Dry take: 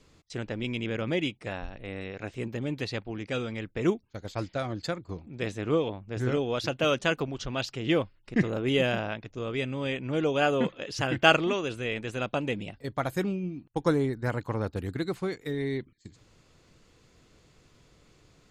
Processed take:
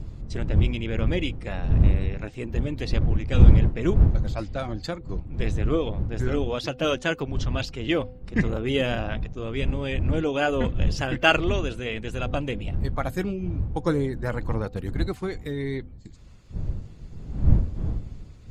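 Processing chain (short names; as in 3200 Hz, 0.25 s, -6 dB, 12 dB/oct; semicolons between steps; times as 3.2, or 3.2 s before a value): bin magnitudes rounded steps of 15 dB; wind noise 84 Hz -26 dBFS; de-hum 253 Hz, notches 3; gain +1.5 dB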